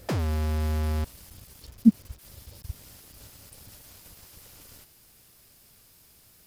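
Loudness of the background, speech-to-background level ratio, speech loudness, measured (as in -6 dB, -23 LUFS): -29.0 LUFS, 3.0 dB, -26.0 LUFS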